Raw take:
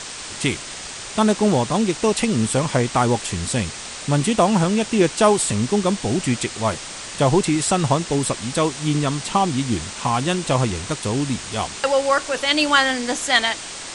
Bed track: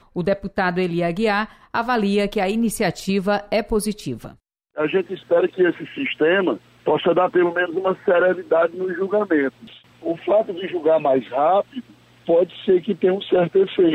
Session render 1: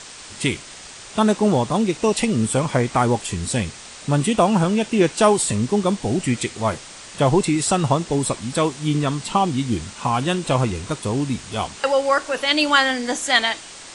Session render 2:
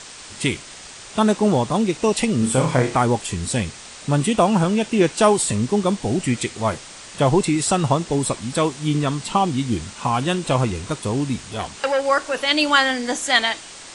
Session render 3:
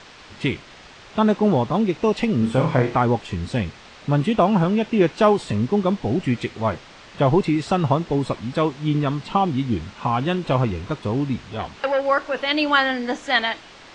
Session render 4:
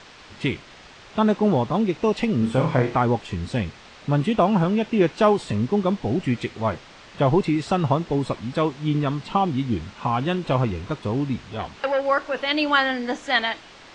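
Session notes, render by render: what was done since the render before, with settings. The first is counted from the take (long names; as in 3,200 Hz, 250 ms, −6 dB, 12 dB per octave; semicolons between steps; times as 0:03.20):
noise reduction from a noise print 6 dB
0:02.39–0:02.95: flutter between parallel walls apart 5.3 metres, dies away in 0.31 s; 0:11.43–0:12.06: saturating transformer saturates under 1,100 Hz
high-frequency loss of the air 210 metres
level −1.5 dB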